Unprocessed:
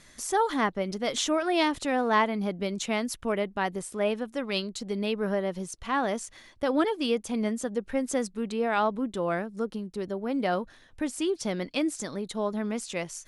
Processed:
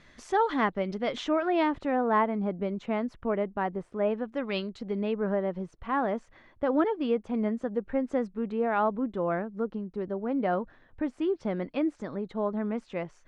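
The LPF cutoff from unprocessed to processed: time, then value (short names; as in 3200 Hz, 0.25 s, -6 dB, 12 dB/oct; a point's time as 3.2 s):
0.79 s 3100 Hz
2.01 s 1400 Hz
4.08 s 1400 Hz
4.48 s 2800 Hz
5.17 s 1600 Hz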